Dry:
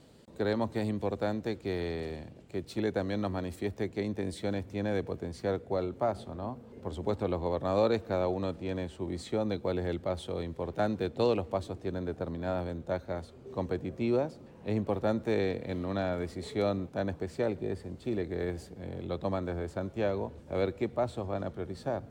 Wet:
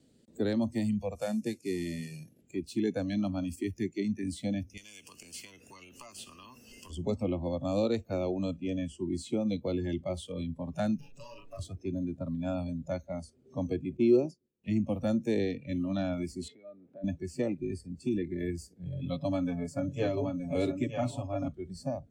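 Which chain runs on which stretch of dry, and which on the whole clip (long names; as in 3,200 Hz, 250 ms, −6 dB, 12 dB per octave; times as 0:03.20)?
0:01.15–0:02.41: variable-slope delta modulation 64 kbit/s + high-pass filter 94 Hz 24 dB per octave
0:04.77–0:06.90: downward compressor, threshold −38 dBFS + every bin compressed towards the loudest bin 2 to 1
0:10.98–0:11.59: lower of the sound and its delayed copy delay 7.1 ms + downward compressor 5 to 1, threshold −40 dBFS + double-tracking delay 39 ms −5 dB
0:13.97–0:14.64: downward expander −41 dBFS + parametric band 380 Hz +11 dB 0.37 octaves
0:16.48–0:17.04: downward compressor 8 to 1, threshold −39 dBFS + band-pass filter 170–2,500 Hz
0:18.85–0:21.48: comb filter 7.1 ms, depth 81% + single-tap delay 922 ms −4.5 dB
whole clip: noise reduction from a noise print of the clip's start 22 dB; graphic EQ with 10 bands 250 Hz +7 dB, 1,000 Hz −11 dB, 8,000 Hz +6 dB; multiband upward and downward compressor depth 40%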